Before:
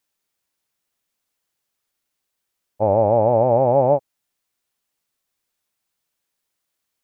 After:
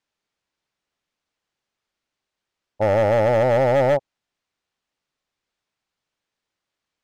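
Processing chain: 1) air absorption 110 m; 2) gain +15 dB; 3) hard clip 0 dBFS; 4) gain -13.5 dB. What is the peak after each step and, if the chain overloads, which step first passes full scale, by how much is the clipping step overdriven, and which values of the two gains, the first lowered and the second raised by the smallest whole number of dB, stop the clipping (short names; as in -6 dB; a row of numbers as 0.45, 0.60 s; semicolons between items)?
-6.0, +9.0, 0.0, -13.5 dBFS; step 2, 9.0 dB; step 2 +6 dB, step 4 -4.5 dB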